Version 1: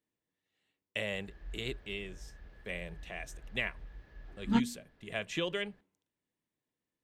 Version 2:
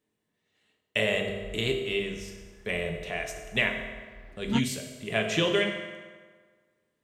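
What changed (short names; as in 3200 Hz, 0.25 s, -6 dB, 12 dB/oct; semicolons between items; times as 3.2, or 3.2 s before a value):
speech +4.0 dB; reverb: on, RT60 1.6 s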